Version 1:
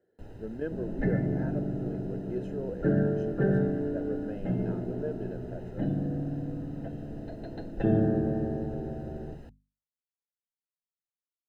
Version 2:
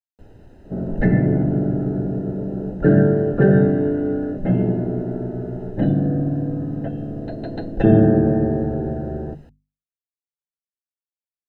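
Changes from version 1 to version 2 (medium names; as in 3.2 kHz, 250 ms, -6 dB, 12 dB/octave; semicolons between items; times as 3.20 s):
speech: muted; second sound +11.5 dB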